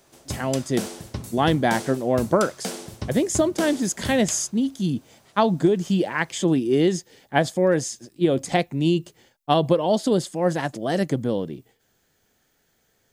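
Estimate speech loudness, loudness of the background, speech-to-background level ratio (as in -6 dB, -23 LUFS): -23.0 LUFS, -34.5 LUFS, 11.5 dB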